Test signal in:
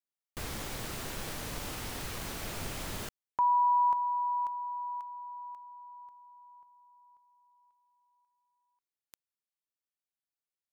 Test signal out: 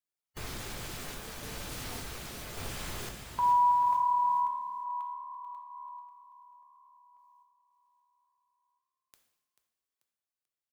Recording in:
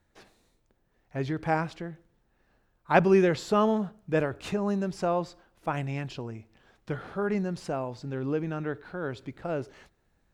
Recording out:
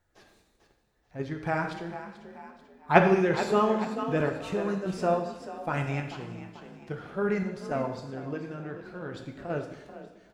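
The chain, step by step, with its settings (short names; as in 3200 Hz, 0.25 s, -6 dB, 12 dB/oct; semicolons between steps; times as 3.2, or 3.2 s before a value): bin magnitudes rounded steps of 15 dB; random-step tremolo; on a send: frequency-shifting echo 0.438 s, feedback 40%, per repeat +37 Hz, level -11.5 dB; on the sum: dynamic EQ 1600 Hz, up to +3 dB, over -44 dBFS, Q 1.4; in parallel at 0 dB: level quantiser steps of 17 dB; on the sum: two-slope reverb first 0.79 s, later 2.6 s, DRR 4 dB; gain -3 dB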